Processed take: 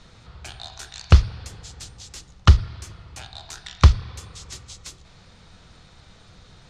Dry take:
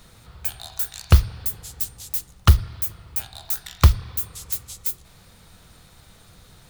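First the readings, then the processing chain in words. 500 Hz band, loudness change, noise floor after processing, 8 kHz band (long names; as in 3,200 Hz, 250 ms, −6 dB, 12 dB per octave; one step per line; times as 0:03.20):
+1.0 dB, +4.5 dB, −51 dBFS, −6.0 dB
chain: low-pass filter 6,500 Hz 24 dB per octave
level +1 dB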